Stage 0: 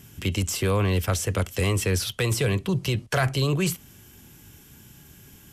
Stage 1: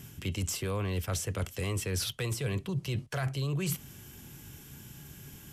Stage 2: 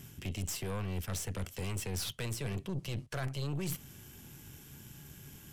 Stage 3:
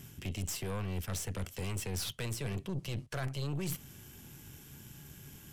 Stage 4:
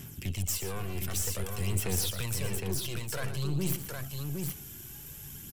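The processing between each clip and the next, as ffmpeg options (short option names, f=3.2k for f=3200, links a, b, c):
-af "equalizer=f=140:t=o:w=0.2:g=6.5,areverse,acompressor=threshold=-30dB:ratio=6,areverse"
-af "aeval=exprs='(tanh(39.8*val(0)+0.6)-tanh(0.6))/39.8':c=same"
-af anull
-af "highshelf=f=7.8k:g=11,aphaser=in_gain=1:out_gain=1:delay=2.9:decay=0.49:speed=0.53:type=sinusoidal,aecho=1:1:118|763:0.282|0.631"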